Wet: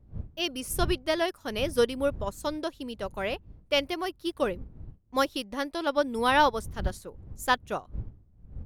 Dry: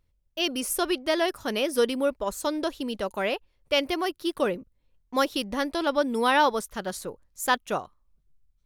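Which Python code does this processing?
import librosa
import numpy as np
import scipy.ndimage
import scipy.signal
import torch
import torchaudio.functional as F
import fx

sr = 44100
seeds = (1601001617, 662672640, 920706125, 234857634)

y = fx.dmg_wind(x, sr, seeds[0], corner_hz=91.0, level_db=-36.0)
y = fx.upward_expand(y, sr, threshold_db=-38.0, expansion=1.5)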